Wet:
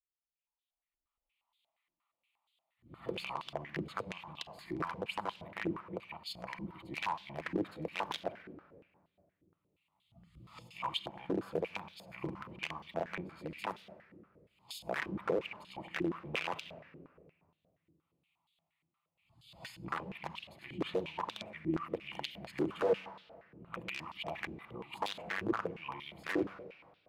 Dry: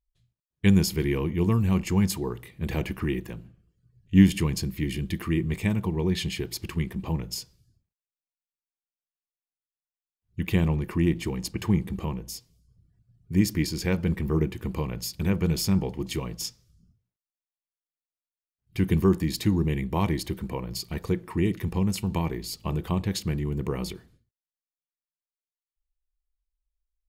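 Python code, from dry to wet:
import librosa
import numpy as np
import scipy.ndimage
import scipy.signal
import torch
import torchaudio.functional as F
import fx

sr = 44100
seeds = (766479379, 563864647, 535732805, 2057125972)

p1 = np.flip(x).copy()
p2 = fx.recorder_agc(p1, sr, target_db=-13.5, rise_db_per_s=19.0, max_gain_db=30)
p3 = 10.0 ** (-20.0 / 20.0) * np.tanh(p2 / 10.0 ** (-20.0 / 20.0))
p4 = p2 + (p3 * librosa.db_to_amplitude(-11.0))
p5 = fx.fixed_phaser(p4, sr, hz=1600.0, stages=6)
p6 = p5 + fx.echo_feedback(p5, sr, ms=99, feedback_pct=42, wet_db=-12, dry=0)
p7 = (np.mod(10.0 ** (15.0 / 20.0) * p6 + 1.0, 2.0) - 1.0) / 10.0 ** (15.0 / 20.0)
p8 = fx.room_shoebox(p7, sr, seeds[0], volume_m3=3900.0, walls='mixed', distance_m=0.73)
p9 = fx.filter_held_bandpass(p8, sr, hz=8.5, low_hz=340.0, high_hz=3500.0)
y = p9 * librosa.db_to_amplitude(-2.5)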